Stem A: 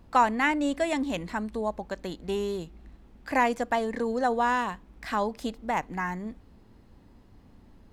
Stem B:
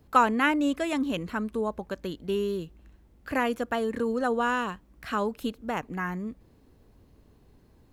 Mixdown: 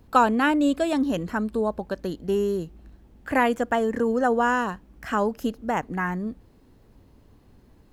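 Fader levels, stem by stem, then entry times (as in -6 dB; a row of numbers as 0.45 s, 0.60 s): -4.5 dB, +1.5 dB; 0.00 s, 0.00 s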